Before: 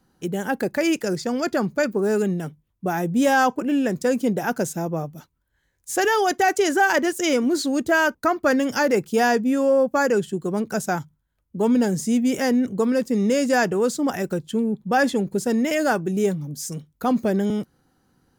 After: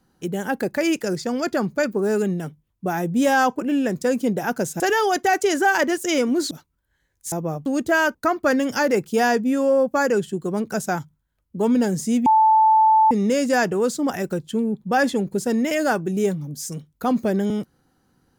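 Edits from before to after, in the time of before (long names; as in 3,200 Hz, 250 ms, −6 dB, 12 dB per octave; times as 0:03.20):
0:04.80–0:05.14: swap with 0:05.95–0:07.66
0:12.26–0:13.11: beep over 877 Hz −11.5 dBFS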